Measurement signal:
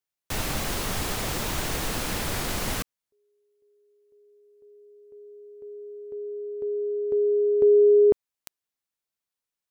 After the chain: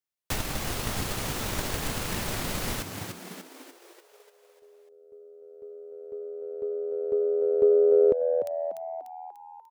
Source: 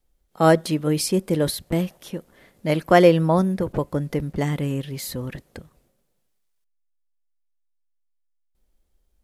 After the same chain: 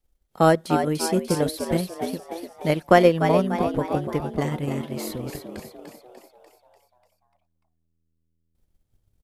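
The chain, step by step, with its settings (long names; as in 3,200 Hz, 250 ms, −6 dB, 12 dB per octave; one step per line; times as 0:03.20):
echo with shifted repeats 295 ms, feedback 54%, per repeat +82 Hz, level −6 dB
transient designer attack +6 dB, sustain −4 dB
level −4 dB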